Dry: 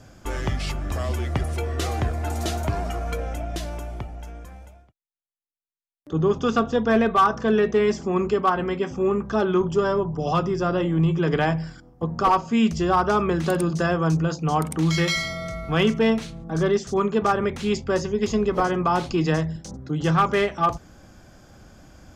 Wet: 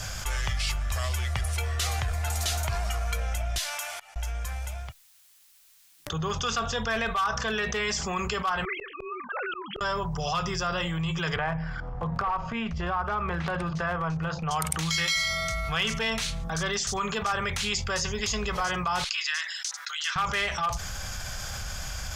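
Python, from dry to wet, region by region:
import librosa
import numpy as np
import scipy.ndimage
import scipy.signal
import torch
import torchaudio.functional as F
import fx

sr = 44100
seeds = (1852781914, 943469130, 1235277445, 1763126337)

y = fx.chain(x, sr, fx.highpass(hz=1000.0, slope=12),
    fx.auto_swell(attack_ms=524.0),
    fx.upward_expand(threshold_db=-60.0, expansion=1.5), at=(3.58, 4.16))
y = fx.chain(y, sr, fx.sine_speech(),
    fx.highpass(hz=430.0, slope=6),
    fx.auto_swell(attack_ms=705.0), at=(8.65, 9.81))
y = fx.chain(y, sr, fx.lowpass(hz=1500.0, slope=12),
    fx.transient(attack_db=-11, sustain_db=-7),
    fx.band_squash(depth_pct=100), at=(11.36, 14.51))
y = fx.chain(y, sr, fx.highpass(hz=1500.0, slope=24),
    fx.high_shelf(hz=6500.0, db=-9.0), at=(19.04, 20.16))
y = fx.tone_stack(y, sr, knobs='10-0-10')
y = fx.env_flatten(y, sr, amount_pct=70)
y = y * librosa.db_to_amplitude(-1.5)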